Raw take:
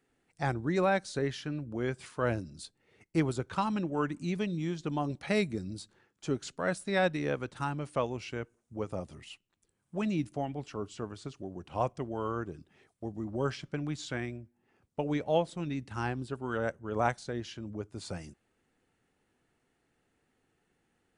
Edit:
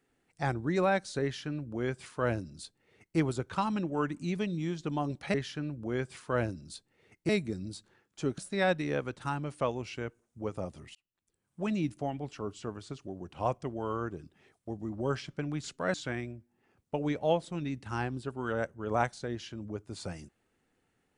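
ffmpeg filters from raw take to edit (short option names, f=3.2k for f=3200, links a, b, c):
-filter_complex "[0:a]asplit=7[a][b][c][d][e][f][g];[a]atrim=end=5.342[h];[b]atrim=start=1.228:end=3.182[i];[c]atrim=start=5.338:end=6.432[j];[d]atrim=start=6.728:end=9.3,asetpts=PTS-STARTPTS,afade=t=out:st=2.568:d=0.004:c=hsin[k];[e]atrim=start=9.3:end=13.992,asetpts=PTS-STARTPTS,afade=t=in:d=0.67[l];[f]atrim=start=6.428:end=6.732[m];[g]atrim=start=13.988[n];[h][i]acrossfade=d=0.004:c1=hsin:c2=hsin[o];[o][j]acrossfade=d=0.004:c1=hsin:c2=hsin[p];[k][l]concat=n=2:v=0:a=1[q];[p][q]acrossfade=d=0.004:c1=hsin:c2=hsin[r];[r][m]acrossfade=d=0.004:c1=hsin:c2=hsin[s];[s][n]acrossfade=d=0.004:c1=hsin:c2=hsin"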